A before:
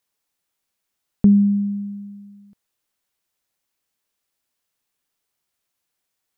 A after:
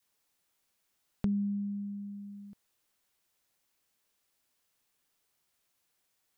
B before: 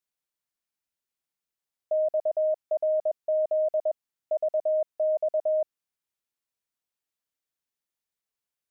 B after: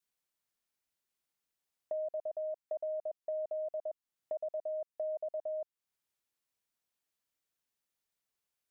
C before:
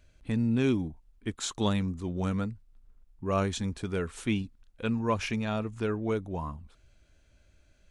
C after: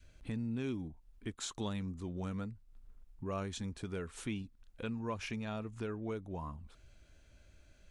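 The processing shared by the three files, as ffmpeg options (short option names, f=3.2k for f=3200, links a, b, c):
-af "adynamicequalizer=threshold=0.02:dfrequency=600:dqfactor=1.3:tfrequency=600:tqfactor=1.3:attack=5:release=100:ratio=0.375:range=2:mode=cutabove:tftype=bell,acompressor=threshold=-46dB:ratio=2,volume=1dB"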